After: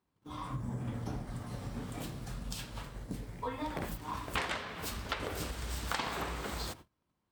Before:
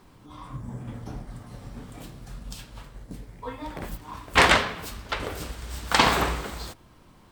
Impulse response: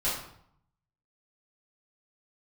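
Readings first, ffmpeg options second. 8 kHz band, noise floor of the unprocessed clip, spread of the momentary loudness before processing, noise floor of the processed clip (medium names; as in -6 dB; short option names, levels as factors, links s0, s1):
-9.5 dB, -54 dBFS, 23 LU, -82 dBFS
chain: -af "agate=range=0.0355:threshold=0.00398:ratio=16:detection=peak,acompressor=threshold=0.02:ratio=12,highpass=50,volume=1.19"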